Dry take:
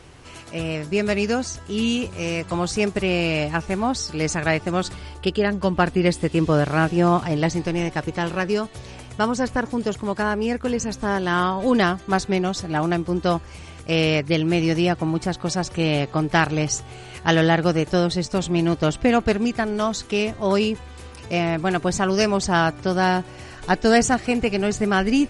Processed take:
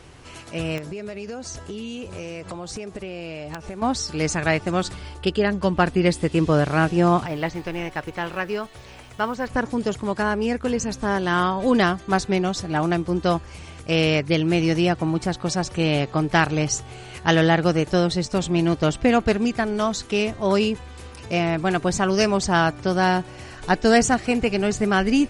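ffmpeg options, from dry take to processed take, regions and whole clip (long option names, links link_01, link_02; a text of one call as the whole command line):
ffmpeg -i in.wav -filter_complex "[0:a]asettb=1/sr,asplit=3[link_01][link_02][link_03];[link_01]atrim=end=0.784[link_04];[link_02]atrim=start=0.78:end=3.82,asetpts=PTS-STARTPTS,afade=type=in:duration=0.004:curve=qsin,afade=type=out:start_time=3.036:duration=0.004:curve=qsin,equalizer=frequency=530:width=1.2:gain=5,acompressor=threshold=-29dB:ratio=12:attack=3.2:release=140:knee=1:detection=peak,aeval=exprs='(mod(11.9*val(0)+1,2)-1)/11.9':channel_layout=same[link_05];[link_03]atrim=start=3.816[link_06];[link_04][link_05]acrossfade=duration=0.004:curve1=hsin:curve2=qsin[link_07];[link_07][link_06]acrossfade=duration=0.004:curve1=qsin:curve2=hsin,asettb=1/sr,asplit=3[link_08][link_09][link_10];[link_08]atrim=end=7.264[link_11];[link_09]atrim=start=7.26:end=9.5,asetpts=PTS-STARTPTS,afade=type=in:duration=0.004:curve=qsin,afade=type=out:start_time=2.236:duration=0.004:curve=qsin,acrusher=bits=6:mode=log:mix=0:aa=0.000001,acrossover=split=3500[link_12][link_13];[link_13]acompressor=threshold=-51dB:ratio=4:attack=1:release=60[link_14];[link_12][link_14]amix=inputs=2:normalize=0,equalizer=frequency=150:width=0.34:gain=-8[link_15];[link_10]atrim=start=9.496[link_16];[link_11][link_15]acrossfade=duration=0.004:curve1=hsin:curve2=qsin[link_17];[link_17][link_16]acrossfade=duration=0.004:curve1=qsin:curve2=hsin" out.wav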